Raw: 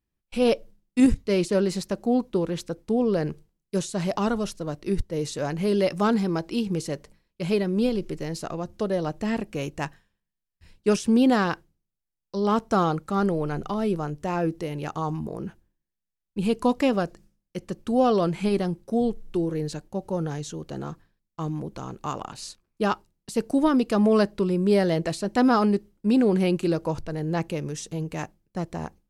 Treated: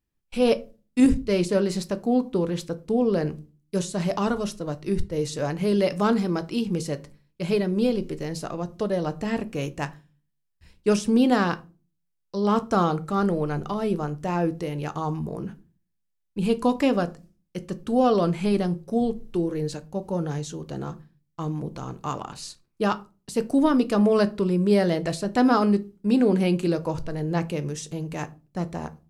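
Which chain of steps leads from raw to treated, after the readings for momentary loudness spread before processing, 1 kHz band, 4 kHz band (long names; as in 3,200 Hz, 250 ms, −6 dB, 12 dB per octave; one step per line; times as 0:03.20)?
14 LU, +0.5 dB, +0.5 dB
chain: rectangular room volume 140 cubic metres, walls furnished, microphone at 0.39 metres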